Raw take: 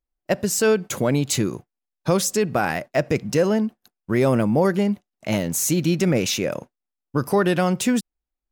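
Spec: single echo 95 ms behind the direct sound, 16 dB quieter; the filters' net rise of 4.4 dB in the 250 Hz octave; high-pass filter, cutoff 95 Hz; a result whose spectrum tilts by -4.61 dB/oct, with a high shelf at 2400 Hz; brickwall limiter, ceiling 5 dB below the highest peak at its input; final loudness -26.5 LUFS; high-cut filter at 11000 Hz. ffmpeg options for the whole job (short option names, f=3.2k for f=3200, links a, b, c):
-af "highpass=95,lowpass=11k,equalizer=f=250:t=o:g=6,highshelf=f=2.4k:g=4.5,alimiter=limit=-9.5dB:level=0:latency=1,aecho=1:1:95:0.158,volume=-6dB"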